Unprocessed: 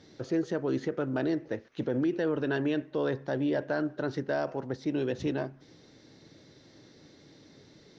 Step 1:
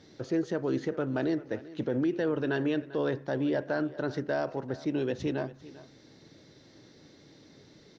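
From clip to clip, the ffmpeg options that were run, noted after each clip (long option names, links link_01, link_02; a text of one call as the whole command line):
ffmpeg -i in.wav -af "aecho=1:1:394:0.126" out.wav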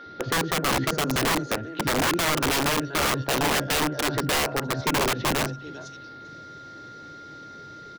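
ffmpeg -i in.wav -filter_complex "[0:a]acrossover=split=230|4700[link_01][link_02][link_03];[link_01]adelay=60[link_04];[link_03]adelay=660[link_05];[link_04][link_02][link_05]amix=inputs=3:normalize=0,aeval=exprs='val(0)+0.00316*sin(2*PI*1400*n/s)':channel_layout=same,aeval=exprs='(mod(22.4*val(0)+1,2)-1)/22.4':channel_layout=same,volume=9dB" out.wav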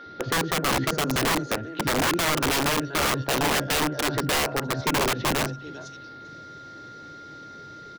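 ffmpeg -i in.wav -af anull out.wav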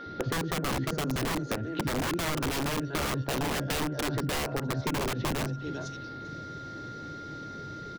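ffmpeg -i in.wav -af "lowshelf=frequency=330:gain=8.5,acompressor=threshold=-28dB:ratio=6" out.wav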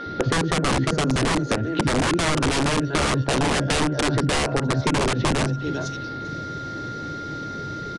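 ffmpeg -i in.wav -af "aresample=22050,aresample=44100,volume=9dB" out.wav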